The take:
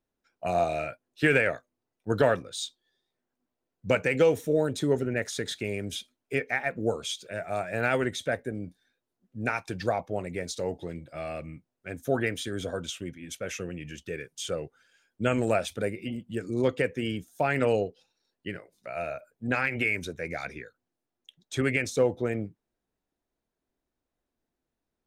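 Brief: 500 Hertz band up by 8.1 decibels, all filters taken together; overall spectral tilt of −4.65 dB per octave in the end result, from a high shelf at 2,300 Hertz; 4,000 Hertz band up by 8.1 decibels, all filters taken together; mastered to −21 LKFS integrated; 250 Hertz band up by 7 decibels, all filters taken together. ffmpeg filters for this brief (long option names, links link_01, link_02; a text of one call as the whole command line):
ffmpeg -i in.wav -af "equalizer=frequency=250:width_type=o:gain=6,equalizer=frequency=500:width_type=o:gain=7.5,highshelf=frequency=2300:gain=4.5,equalizer=frequency=4000:width_type=o:gain=6,volume=2dB" out.wav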